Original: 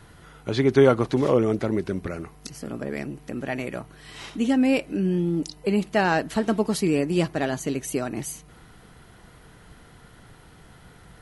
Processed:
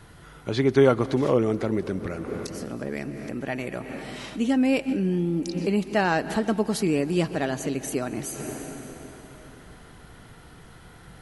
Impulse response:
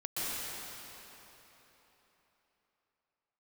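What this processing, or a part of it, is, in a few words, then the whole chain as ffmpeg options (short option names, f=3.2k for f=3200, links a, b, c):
ducked reverb: -filter_complex "[0:a]asplit=3[a][b][c];[1:a]atrim=start_sample=2205[d];[b][d]afir=irnorm=-1:irlink=0[e];[c]apad=whole_len=494519[f];[e][f]sidechaincompress=threshold=-39dB:ratio=8:attack=16:release=120,volume=-8dB[g];[a][g]amix=inputs=2:normalize=0,volume=-1.5dB"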